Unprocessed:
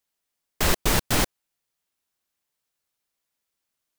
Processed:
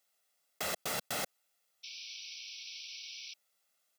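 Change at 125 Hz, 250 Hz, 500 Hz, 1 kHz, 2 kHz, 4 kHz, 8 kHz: -23.5, -20.0, -12.5, -12.0, -11.5, -8.5, -11.0 dB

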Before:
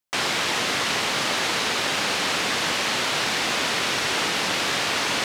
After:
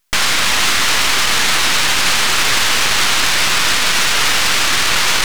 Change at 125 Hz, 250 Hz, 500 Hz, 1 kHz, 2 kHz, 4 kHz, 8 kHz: +7.0, +2.5, +2.0, +7.5, +9.5, +10.0, +12.5 dB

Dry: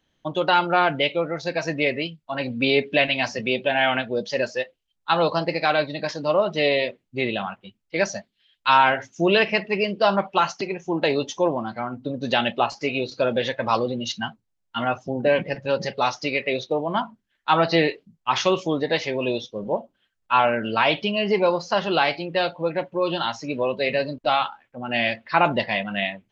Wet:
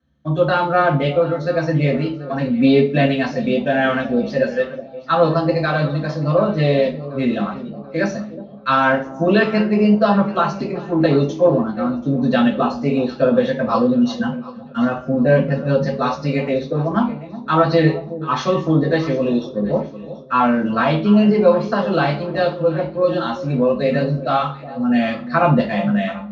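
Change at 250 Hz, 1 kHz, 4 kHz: +11.0, +1.5, -4.5 dB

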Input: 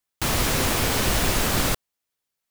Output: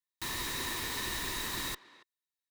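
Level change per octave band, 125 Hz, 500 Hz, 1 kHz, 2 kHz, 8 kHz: -20.5, -18.5, -13.5, -10.5, -12.5 dB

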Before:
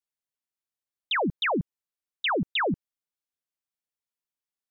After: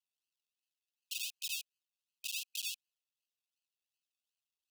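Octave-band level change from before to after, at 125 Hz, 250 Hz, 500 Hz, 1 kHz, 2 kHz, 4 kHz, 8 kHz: under -40 dB, under -40 dB, under -40 dB, under -40 dB, -17.0 dB, -8.5 dB, n/a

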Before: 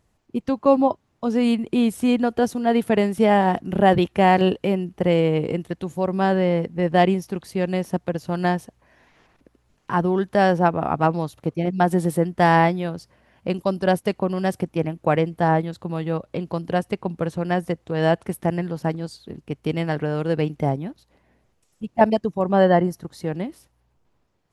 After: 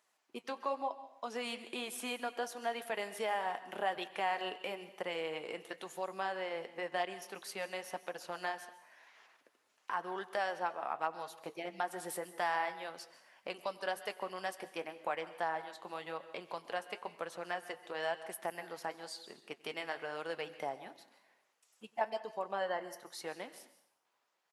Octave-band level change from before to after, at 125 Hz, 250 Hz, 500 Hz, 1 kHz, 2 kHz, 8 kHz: -36.0, -28.5, -18.5, -15.0, -11.5, -6.5 dB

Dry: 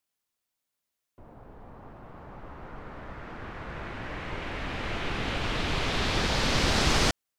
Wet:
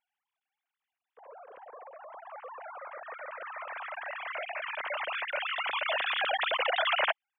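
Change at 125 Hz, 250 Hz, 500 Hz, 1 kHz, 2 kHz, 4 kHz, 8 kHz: under -40 dB, under -30 dB, -1.5 dB, +1.0 dB, +1.0 dB, -3.5 dB, under -40 dB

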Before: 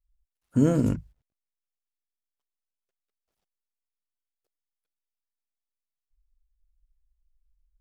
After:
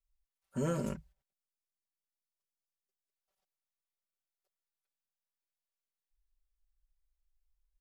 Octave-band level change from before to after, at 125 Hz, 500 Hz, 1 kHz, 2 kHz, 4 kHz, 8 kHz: -12.5 dB, -8.0 dB, -3.5 dB, -4.0 dB, n/a, -4.5 dB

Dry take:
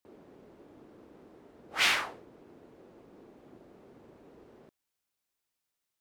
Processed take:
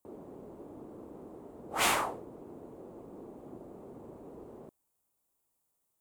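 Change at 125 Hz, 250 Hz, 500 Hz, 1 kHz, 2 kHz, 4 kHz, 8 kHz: +7.0, +7.0, +7.0, +4.5, -5.0, -5.5, +3.5 dB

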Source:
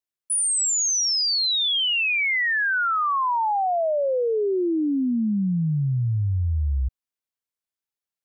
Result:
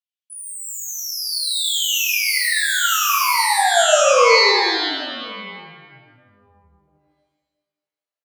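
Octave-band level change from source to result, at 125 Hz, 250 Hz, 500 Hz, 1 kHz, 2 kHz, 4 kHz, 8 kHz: under -25 dB, -12.0 dB, +6.0 dB, +5.5 dB, +5.0 dB, +4.5 dB, +2.0 dB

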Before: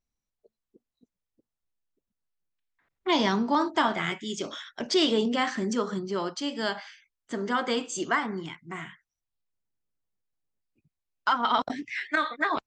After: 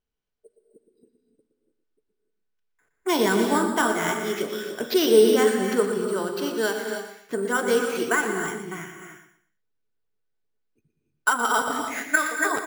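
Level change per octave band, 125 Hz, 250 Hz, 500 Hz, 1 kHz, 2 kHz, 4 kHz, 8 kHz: +1.5, +3.0, +9.0, +1.5, +6.0, -0.5, +10.0 dB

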